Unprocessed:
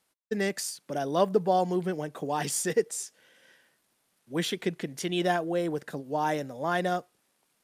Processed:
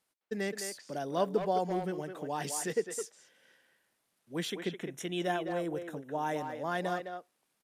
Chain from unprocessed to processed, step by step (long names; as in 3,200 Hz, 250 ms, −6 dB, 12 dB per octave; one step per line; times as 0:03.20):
0:04.50–0:06.45: Butterworth band-reject 4,600 Hz, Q 3.1
far-end echo of a speakerphone 210 ms, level −6 dB
level −6 dB